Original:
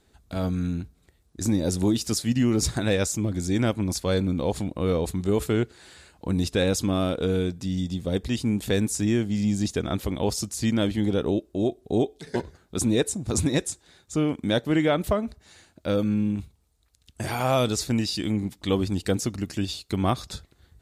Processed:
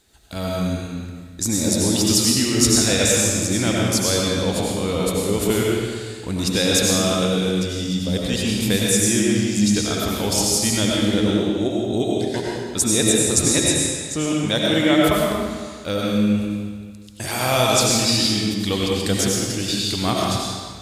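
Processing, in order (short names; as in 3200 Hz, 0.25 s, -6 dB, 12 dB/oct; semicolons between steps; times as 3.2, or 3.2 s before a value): high shelf 2100 Hz +11 dB; digital reverb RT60 1.7 s, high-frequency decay 0.9×, pre-delay 55 ms, DRR -3.5 dB; gain -1 dB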